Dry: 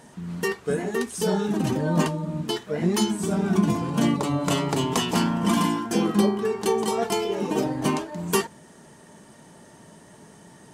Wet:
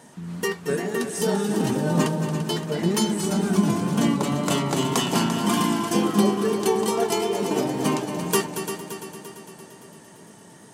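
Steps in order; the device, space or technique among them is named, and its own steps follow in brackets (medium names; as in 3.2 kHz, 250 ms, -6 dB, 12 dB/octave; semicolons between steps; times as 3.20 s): multi-head tape echo (multi-head delay 114 ms, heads second and third, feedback 60%, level -10 dB; wow and flutter 24 cents); high-pass 100 Hz; treble shelf 6.8 kHz +4 dB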